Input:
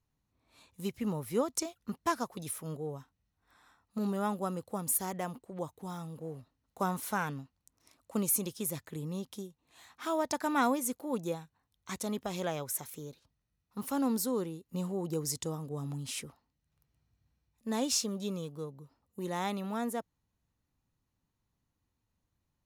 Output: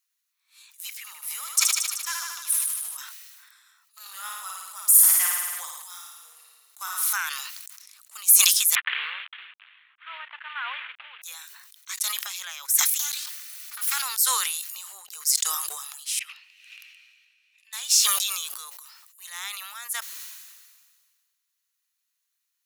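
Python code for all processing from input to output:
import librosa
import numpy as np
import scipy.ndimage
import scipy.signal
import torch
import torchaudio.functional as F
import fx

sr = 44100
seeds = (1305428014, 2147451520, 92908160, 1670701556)

y = fx.chain(x, sr, fx.low_shelf(hz=440.0, db=-10.0),
    fx.echo_heads(ms=76, heads='first and second', feedback_pct=52, wet_db=-7.5), at=(0.99, 2.97))
y = fx.chain(y, sr, fx.highpass(hz=300.0, slope=24),
    fx.room_flutter(wall_m=9.5, rt60_s=1.0),
    fx.sustainer(db_per_s=32.0), at=(4.0, 7.13))
y = fx.chain(y, sr, fx.cvsd(bps=16000),
    fx.upward_expand(threshold_db=-52.0, expansion=1.5), at=(8.75, 11.22))
y = fx.chain(y, sr, fx.lower_of_two(delay_ms=3.4),
    fx.steep_highpass(hz=640.0, slope=96),
    fx.env_flatten(amount_pct=70), at=(12.99, 14.02))
y = fx.chain(y, sr, fx.bandpass_q(hz=2600.0, q=7.6),
    fx.band_squash(depth_pct=100), at=(16.19, 17.73))
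y = scipy.signal.sosfilt(scipy.signal.butter(4, 1300.0, 'highpass', fs=sr, output='sos'), y)
y = fx.tilt_eq(y, sr, slope=3.5)
y = fx.sustainer(y, sr, db_per_s=34.0)
y = y * 10.0 ** (2.0 / 20.0)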